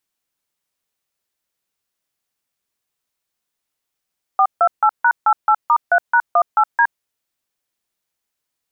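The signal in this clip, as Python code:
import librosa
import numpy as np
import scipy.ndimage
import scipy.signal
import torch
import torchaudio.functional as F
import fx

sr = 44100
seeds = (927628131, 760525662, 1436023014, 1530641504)

y = fx.dtmf(sr, digits='428#88*3#18D', tone_ms=67, gap_ms=151, level_db=-12.5)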